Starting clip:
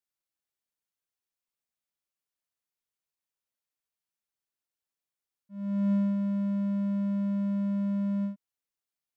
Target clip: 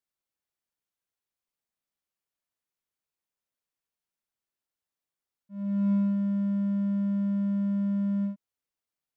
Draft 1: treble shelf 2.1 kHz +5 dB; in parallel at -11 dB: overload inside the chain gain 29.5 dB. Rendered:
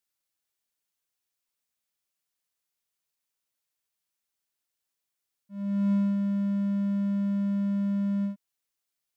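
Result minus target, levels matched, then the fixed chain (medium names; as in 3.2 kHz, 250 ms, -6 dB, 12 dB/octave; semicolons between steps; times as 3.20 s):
4 kHz band +6.5 dB
treble shelf 2.1 kHz -4.5 dB; in parallel at -11 dB: overload inside the chain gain 29.5 dB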